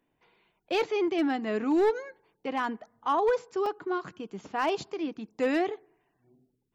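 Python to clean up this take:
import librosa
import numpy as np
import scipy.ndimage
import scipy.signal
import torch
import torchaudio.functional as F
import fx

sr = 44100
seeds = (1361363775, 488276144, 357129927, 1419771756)

y = fx.fix_declip(x, sr, threshold_db=-19.0)
y = fx.fix_interpolate(y, sr, at_s=(3.66,), length_ms=3.2)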